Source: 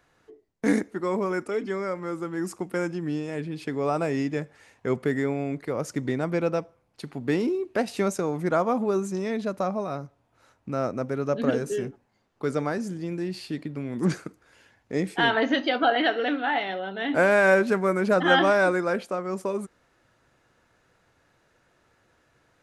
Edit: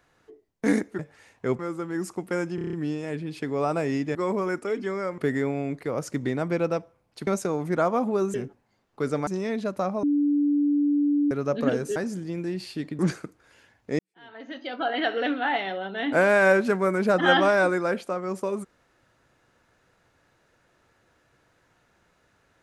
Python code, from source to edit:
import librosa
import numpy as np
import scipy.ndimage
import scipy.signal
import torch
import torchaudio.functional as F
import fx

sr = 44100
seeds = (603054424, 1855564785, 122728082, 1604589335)

y = fx.edit(x, sr, fx.swap(start_s=0.99, length_s=1.03, other_s=4.4, other_length_s=0.6),
    fx.stutter(start_s=2.98, slice_s=0.03, count=7),
    fx.cut(start_s=7.09, length_s=0.92),
    fx.bleep(start_s=9.84, length_s=1.28, hz=290.0, db=-19.0),
    fx.move(start_s=11.77, length_s=0.93, to_s=9.08),
    fx.cut(start_s=13.73, length_s=0.28),
    fx.fade_in_span(start_s=15.01, length_s=1.22, curve='qua'), tone=tone)